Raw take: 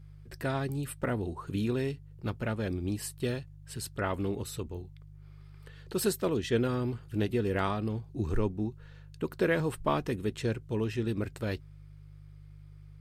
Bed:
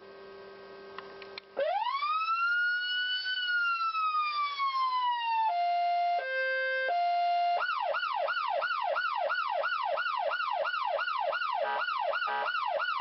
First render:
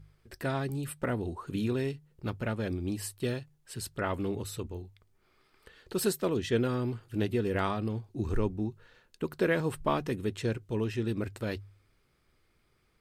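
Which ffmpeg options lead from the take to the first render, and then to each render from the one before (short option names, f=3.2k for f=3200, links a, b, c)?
-af "bandreject=f=50:t=h:w=4,bandreject=f=100:t=h:w=4,bandreject=f=150:t=h:w=4"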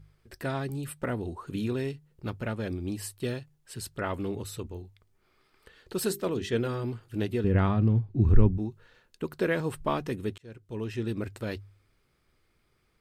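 -filter_complex "[0:a]asettb=1/sr,asplit=3[a][b][c];[a]atrim=end=6.074[d];[b]atrim=start=6.07:end=6.84,asetpts=PTS-STARTPTS,afade=t=in:d=0.004:c=qsin,afade=t=out:st=0.766:d=0.004:c=qsin,bandreject=f=50:t=h:w=6,bandreject=f=100:t=h:w=6,bandreject=f=150:t=h:w=6,bandreject=f=200:t=h:w=6,bandreject=f=250:t=h:w=6,bandreject=f=300:t=h:w=6,bandreject=f=350:t=h:w=6,bandreject=f=400:t=h:w=6[e];[c]atrim=start=6.836[f];[d][e]acrossfade=d=0.004:c1=hsin:c2=qsin[g];[g][f]acrossfade=d=0.004:c1=qsin:c2=hsin,asettb=1/sr,asplit=3[h][i][j];[h]atrim=end=7.444[k];[i]atrim=start=7.44:end=8.58,asetpts=PTS-STARTPTS,afade=t=in:d=0.004:c=qsin,afade=t=out:st=1.136:d=0.004:c=qsin,bass=f=250:g=13,treble=f=4k:g=-13[l];[j]atrim=start=8.576[m];[k][l]acrossfade=d=0.004:c1=hsin:c2=qsin[n];[n][m]acrossfade=d=0.004:c1=qsin:c2=hsin,asplit=2[o][p];[o]atrim=end=10.38,asetpts=PTS-STARTPTS,afade=t=out:st=10.376:d=0.004:c=hsin[q];[p]atrim=start=10.38,asetpts=PTS-STARTPTS,afade=t=in:d=0.63[r];[q][r]concat=n=2:v=0:a=1"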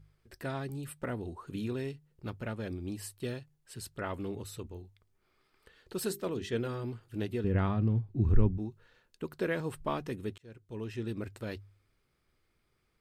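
-af "volume=-5dB"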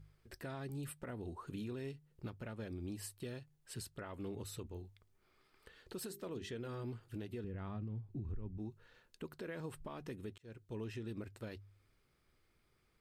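-af "acompressor=threshold=-31dB:ratio=6,alimiter=level_in=11.5dB:limit=-24dB:level=0:latency=1:release=339,volume=-11.5dB"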